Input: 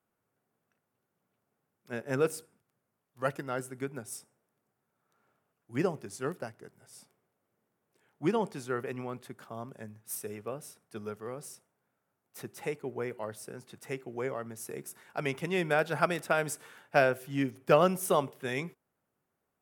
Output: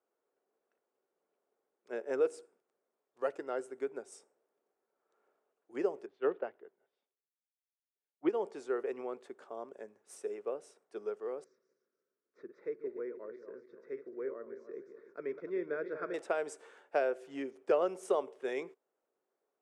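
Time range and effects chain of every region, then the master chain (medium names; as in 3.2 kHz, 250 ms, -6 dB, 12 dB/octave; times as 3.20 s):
6.06–8.29 s: Chebyshev low-pass 3.5 kHz, order 4 + three bands expanded up and down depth 100%
11.44–16.14 s: backward echo that repeats 148 ms, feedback 55%, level -9 dB + tape spacing loss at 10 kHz 36 dB + static phaser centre 2.9 kHz, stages 6
whole clip: compression 2:1, threshold -29 dBFS; Chebyshev band-pass 410–8100 Hz, order 3; tilt shelf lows +9 dB, about 660 Hz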